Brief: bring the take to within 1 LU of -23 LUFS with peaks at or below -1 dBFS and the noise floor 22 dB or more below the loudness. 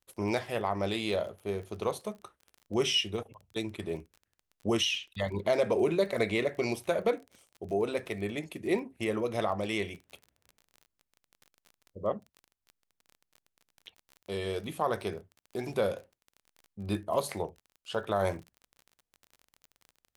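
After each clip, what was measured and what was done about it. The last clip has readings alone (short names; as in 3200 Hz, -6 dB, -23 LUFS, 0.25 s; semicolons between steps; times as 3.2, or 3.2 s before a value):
ticks 28/s; loudness -32.5 LUFS; peak -15.5 dBFS; loudness target -23.0 LUFS
-> de-click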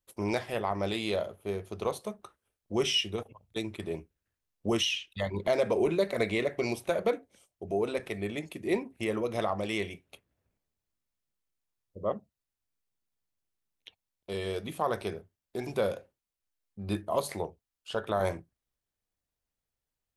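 ticks 0/s; loudness -32.5 LUFS; peak -15.5 dBFS; loudness target -23.0 LUFS
-> gain +9.5 dB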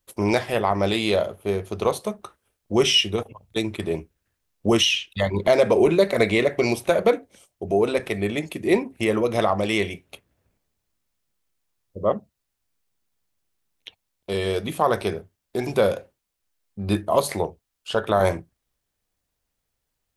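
loudness -23.0 LUFS; peak -6.0 dBFS; noise floor -79 dBFS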